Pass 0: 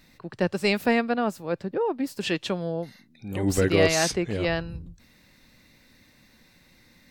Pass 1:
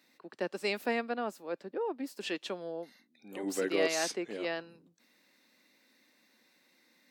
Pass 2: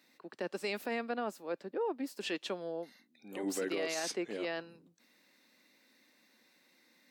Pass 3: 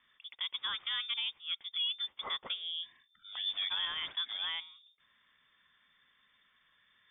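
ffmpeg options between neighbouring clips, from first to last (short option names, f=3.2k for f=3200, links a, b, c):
-af "highpass=f=250:w=0.5412,highpass=f=250:w=1.3066,volume=-8.5dB"
-af "alimiter=level_in=2.5dB:limit=-24dB:level=0:latency=1:release=26,volume=-2.5dB"
-af "lowpass=f=3.2k:t=q:w=0.5098,lowpass=f=3.2k:t=q:w=0.6013,lowpass=f=3.2k:t=q:w=0.9,lowpass=f=3.2k:t=q:w=2.563,afreqshift=-3800"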